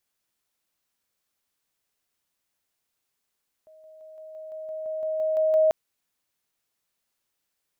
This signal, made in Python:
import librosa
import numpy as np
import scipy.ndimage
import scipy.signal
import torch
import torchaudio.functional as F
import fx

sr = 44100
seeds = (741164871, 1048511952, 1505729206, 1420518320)

y = fx.level_ladder(sr, hz=629.0, from_db=-49.0, step_db=3.0, steps=12, dwell_s=0.17, gap_s=0.0)